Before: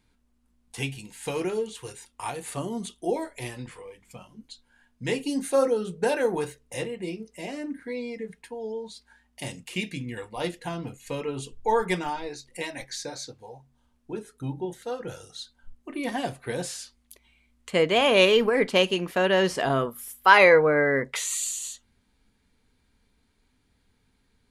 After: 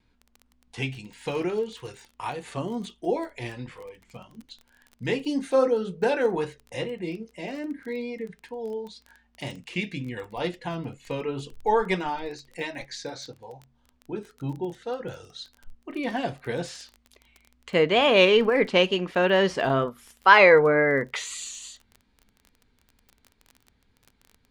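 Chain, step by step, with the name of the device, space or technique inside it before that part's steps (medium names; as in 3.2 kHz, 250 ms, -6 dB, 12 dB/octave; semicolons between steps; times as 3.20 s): lo-fi chain (low-pass 4.8 kHz 12 dB/octave; wow and flutter; crackle 21 per s -37 dBFS); trim +1 dB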